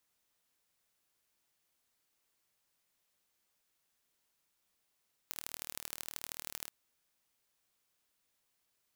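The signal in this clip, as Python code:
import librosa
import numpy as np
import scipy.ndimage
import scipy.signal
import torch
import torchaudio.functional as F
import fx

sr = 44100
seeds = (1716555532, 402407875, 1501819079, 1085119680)

y = fx.impulse_train(sr, length_s=1.38, per_s=38.7, accent_every=3, level_db=-11.5)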